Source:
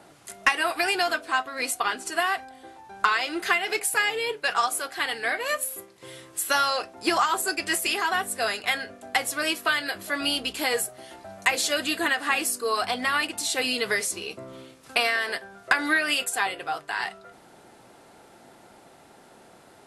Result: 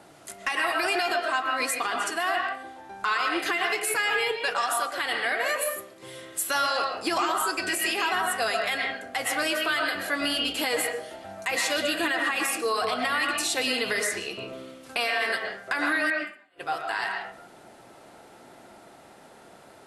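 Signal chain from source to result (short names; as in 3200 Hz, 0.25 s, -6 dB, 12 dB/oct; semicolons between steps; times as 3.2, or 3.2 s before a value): 16.05–16.64 flipped gate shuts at -18 dBFS, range -41 dB; on a send at -2 dB: BPF 150–3300 Hz + reverb RT60 0.45 s, pre-delay 85 ms; on the sum: limiter -16.5 dBFS, peak gain reduction 9 dB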